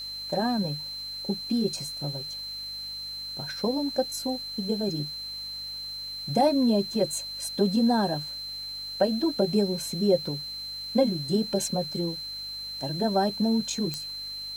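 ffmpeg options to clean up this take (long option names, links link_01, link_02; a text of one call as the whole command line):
ffmpeg -i in.wav -af "adeclick=threshold=4,bandreject=frequency=49.8:width_type=h:width=4,bandreject=frequency=99.6:width_type=h:width=4,bandreject=frequency=149.4:width_type=h:width=4,bandreject=frequency=199.2:width_type=h:width=4,bandreject=frequency=249:width_type=h:width=4,bandreject=frequency=298.8:width_type=h:width=4,bandreject=frequency=4100:width=30,afwtdn=0.0022" out.wav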